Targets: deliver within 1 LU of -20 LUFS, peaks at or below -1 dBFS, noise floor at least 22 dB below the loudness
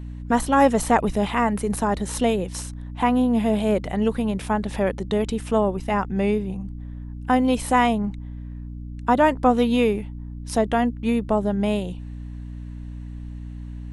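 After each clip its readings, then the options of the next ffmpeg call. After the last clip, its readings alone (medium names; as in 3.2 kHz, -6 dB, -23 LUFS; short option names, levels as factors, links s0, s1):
hum 60 Hz; highest harmonic 300 Hz; hum level -32 dBFS; loudness -22.0 LUFS; peak level -5.0 dBFS; loudness target -20.0 LUFS
-> -af "bandreject=f=60:t=h:w=6,bandreject=f=120:t=h:w=6,bandreject=f=180:t=h:w=6,bandreject=f=240:t=h:w=6,bandreject=f=300:t=h:w=6"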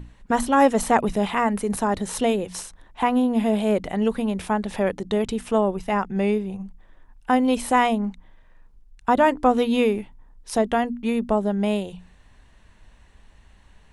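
hum not found; loudness -22.5 LUFS; peak level -5.0 dBFS; loudness target -20.0 LUFS
-> -af "volume=1.33"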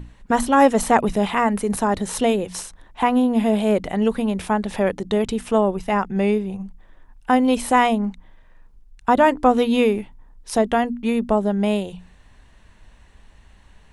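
loudness -20.0 LUFS; peak level -3.0 dBFS; noise floor -51 dBFS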